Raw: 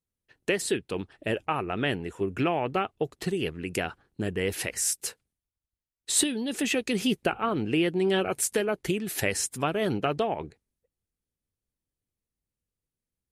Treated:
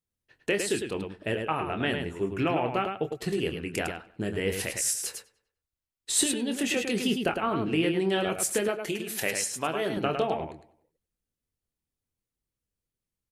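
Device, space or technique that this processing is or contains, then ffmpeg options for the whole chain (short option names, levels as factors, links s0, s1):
slapback doubling: -filter_complex "[0:a]asplit=3[s0][s1][s2];[s1]adelay=25,volume=0.376[s3];[s2]adelay=106,volume=0.501[s4];[s0][s3][s4]amix=inputs=3:normalize=0,asettb=1/sr,asplit=3[s5][s6][s7];[s5]atrim=end=8.684[s8];[s6]atrim=start=8.68:end=9.97,asetpts=PTS-STARTPTS,afade=t=in:d=0.004:c=qsin,afade=t=out:st=1.286:d=0.004:c=qsin,highpass=f=340:p=1[s9];[s7]atrim=start=9.966[s10];[s8][s9]acrossfade=d=0.004:c1=hsin:c2=qsin[s11];[s11][s10]acrossfade=d=0.004:c1=qsin:c2=hsin,asplit=2[s12][s13];[s13]adelay=97,lowpass=f=4100:p=1,volume=0.112,asplit=2[s14][s15];[s15]adelay=97,lowpass=f=4100:p=1,volume=0.46,asplit=2[s16][s17];[s17]adelay=97,lowpass=f=4100:p=1,volume=0.46,asplit=2[s18][s19];[s19]adelay=97,lowpass=f=4100:p=1,volume=0.46[s20];[s12][s14][s16][s18][s20]amix=inputs=5:normalize=0,volume=0.841"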